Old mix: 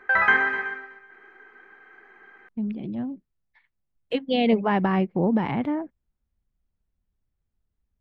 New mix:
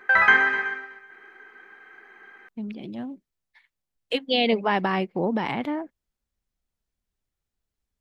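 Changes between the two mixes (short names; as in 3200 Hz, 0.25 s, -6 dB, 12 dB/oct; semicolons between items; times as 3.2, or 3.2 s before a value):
speech: add tone controls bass -8 dB, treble +6 dB; master: add high shelf 2800 Hz +9.5 dB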